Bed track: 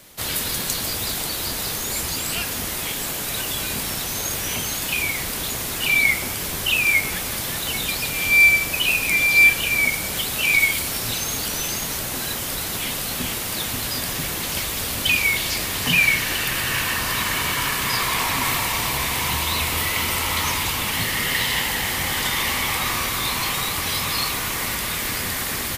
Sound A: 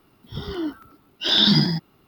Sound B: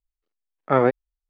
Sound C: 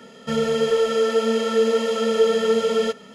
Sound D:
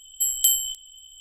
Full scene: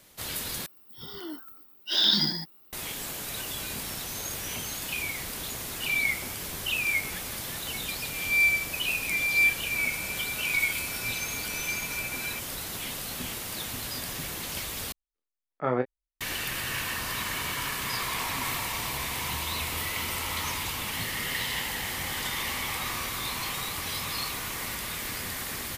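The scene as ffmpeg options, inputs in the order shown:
-filter_complex "[0:a]volume=0.355[s0];[1:a]aemphasis=mode=production:type=bsi[s1];[3:a]lowpass=f=2400:t=q:w=0.5098,lowpass=f=2400:t=q:w=0.6013,lowpass=f=2400:t=q:w=0.9,lowpass=f=2400:t=q:w=2.563,afreqshift=-2800[s2];[2:a]asplit=2[s3][s4];[s4]adelay=24,volume=0.501[s5];[s3][s5]amix=inputs=2:normalize=0[s6];[s0]asplit=3[s7][s8][s9];[s7]atrim=end=0.664[s10];[s1]atrim=end=2.07,asetpts=PTS-STARTPTS,volume=0.376[s11];[s8]atrim=start=2.726:end=14.924[s12];[s6]atrim=end=1.29,asetpts=PTS-STARTPTS,volume=0.316[s13];[s9]atrim=start=16.206[s14];[s2]atrim=end=3.14,asetpts=PTS-STARTPTS,volume=0.141,afade=t=in:d=0.004:c=hsin,afade=t=out:st=3.136:d=0.004:c=hsin,adelay=9480[s15];[s10][s11]acrossfade=d=0.004:c1=hsin:c2=hsin[s16];[s16][s12]acrossfade=d=0.004:c1=hsin:c2=hsin[s17];[s17][s13]acrossfade=d=0.004:c1=hsin:c2=hsin[s18];[s18][s14]acrossfade=d=0.004:c1=hsin:c2=hsin[s19];[s19][s15]amix=inputs=2:normalize=0"

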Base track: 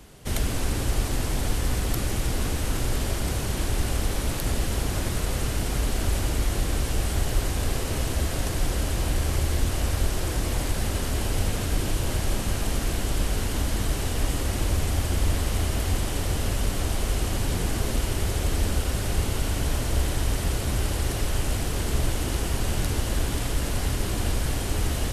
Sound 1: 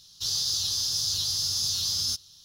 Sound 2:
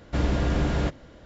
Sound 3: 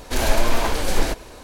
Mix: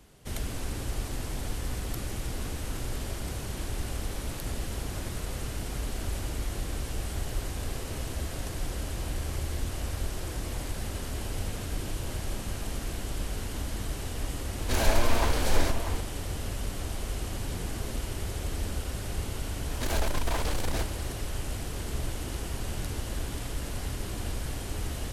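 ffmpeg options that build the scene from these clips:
-filter_complex "[3:a]asplit=2[s0][s1];[0:a]volume=0.398[s2];[s0]asplit=2[s3][s4];[s4]adelay=641.4,volume=0.398,highshelf=f=4000:g=-14.4[s5];[s3][s5]amix=inputs=2:normalize=0[s6];[s1]asoftclip=type=tanh:threshold=0.0891[s7];[s6]atrim=end=1.43,asetpts=PTS-STARTPTS,volume=0.531,afade=t=in:d=0.004:c=hsin,afade=t=out:st=1.426:d=0.004:c=hsin,adelay=14580[s8];[s7]atrim=end=1.43,asetpts=PTS-STARTPTS,volume=0.596,afade=t=in:d=0.004:c=hsin,afade=t=out:st=1.426:d=0.004:c=hsin,adelay=19700[s9];[s2][s8][s9]amix=inputs=3:normalize=0"

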